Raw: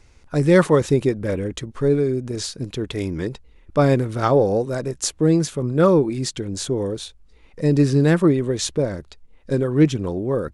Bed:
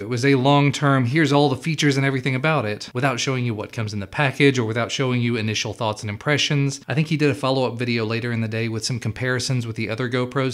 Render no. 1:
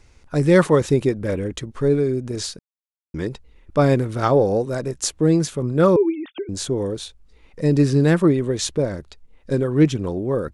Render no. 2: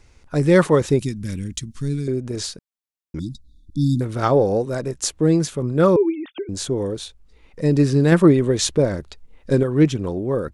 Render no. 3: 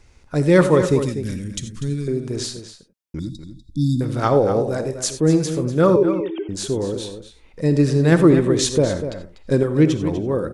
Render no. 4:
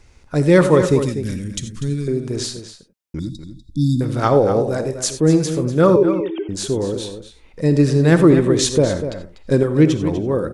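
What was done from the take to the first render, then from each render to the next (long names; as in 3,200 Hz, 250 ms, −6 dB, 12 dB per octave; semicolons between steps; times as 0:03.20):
0:02.59–0:03.14: silence; 0:05.96–0:06.49: three sine waves on the formant tracks
0:00.99–0:02.08: drawn EQ curve 230 Hz 0 dB, 530 Hz −23 dB, 5,600 Hz +7 dB; 0:03.19–0:04.01: linear-phase brick-wall band-stop 330–3,400 Hz; 0:08.12–0:09.63: clip gain +3.5 dB
slap from a distant wall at 42 metres, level −10 dB; reverb whose tail is shaped and stops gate 110 ms rising, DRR 10.5 dB
level +2 dB; brickwall limiter −2 dBFS, peak gain reduction 2 dB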